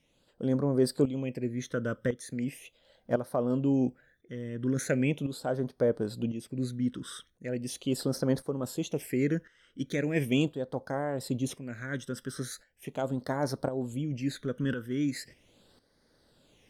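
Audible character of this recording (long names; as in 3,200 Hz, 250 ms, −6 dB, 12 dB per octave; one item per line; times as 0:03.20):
phaser sweep stages 12, 0.39 Hz, lowest notch 750–2,600 Hz
tremolo saw up 0.95 Hz, depth 70%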